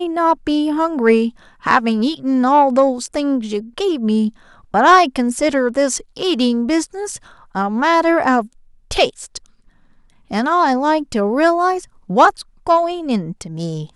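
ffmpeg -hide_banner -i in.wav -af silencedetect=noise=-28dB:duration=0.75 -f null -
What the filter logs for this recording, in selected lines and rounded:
silence_start: 9.37
silence_end: 10.31 | silence_duration: 0.93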